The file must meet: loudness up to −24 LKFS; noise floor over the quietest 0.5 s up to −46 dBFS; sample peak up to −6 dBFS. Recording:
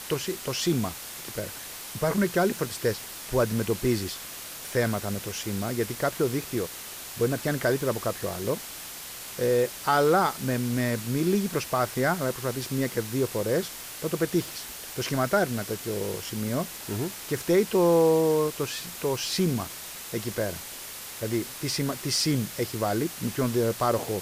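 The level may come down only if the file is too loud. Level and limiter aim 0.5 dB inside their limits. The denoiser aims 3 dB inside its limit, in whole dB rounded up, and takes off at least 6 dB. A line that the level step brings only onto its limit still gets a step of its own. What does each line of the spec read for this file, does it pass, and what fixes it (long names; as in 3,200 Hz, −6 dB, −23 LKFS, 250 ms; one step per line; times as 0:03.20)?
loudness −27.5 LKFS: in spec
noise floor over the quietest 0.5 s −40 dBFS: out of spec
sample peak −11.0 dBFS: in spec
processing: broadband denoise 9 dB, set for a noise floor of −40 dBFS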